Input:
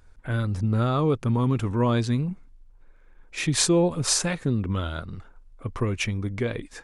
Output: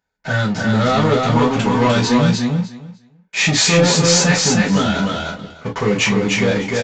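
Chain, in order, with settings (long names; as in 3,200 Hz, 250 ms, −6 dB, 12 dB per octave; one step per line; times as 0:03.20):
high-pass filter 160 Hz 6 dB per octave
low-shelf EQ 230 Hz −7.5 dB
notch filter 1,200 Hz, Q 7.3
leveller curve on the samples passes 5
repeating echo 301 ms, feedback 16%, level −3 dB
reverb whose tail is shaped and stops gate 80 ms falling, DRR −5.5 dB
downsampling to 16,000 Hz
level −7.5 dB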